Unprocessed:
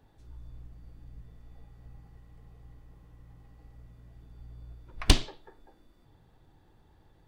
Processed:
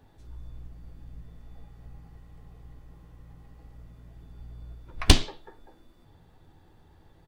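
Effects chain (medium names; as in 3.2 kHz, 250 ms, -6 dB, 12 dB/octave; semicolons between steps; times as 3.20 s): doubling 12 ms -11 dB; trim +4 dB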